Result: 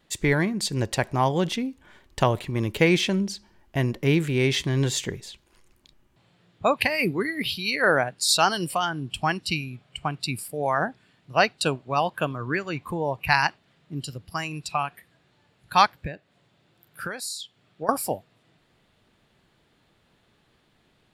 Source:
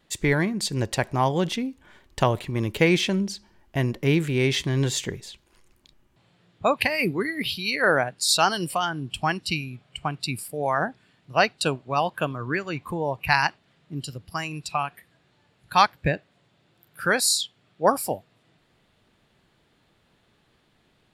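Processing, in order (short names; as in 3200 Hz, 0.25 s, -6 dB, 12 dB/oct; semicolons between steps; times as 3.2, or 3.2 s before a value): 15.95–17.89 compressor 10:1, threshold -30 dBFS, peak gain reduction 17 dB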